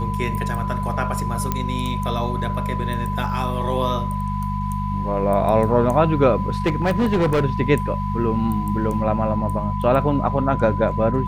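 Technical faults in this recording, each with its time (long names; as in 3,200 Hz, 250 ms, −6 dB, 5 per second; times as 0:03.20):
mains hum 50 Hz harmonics 4 −25 dBFS
whistle 1,000 Hz −27 dBFS
0:01.52: click −8 dBFS
0:06.66–0:07.44: clipping −14.5 dBFS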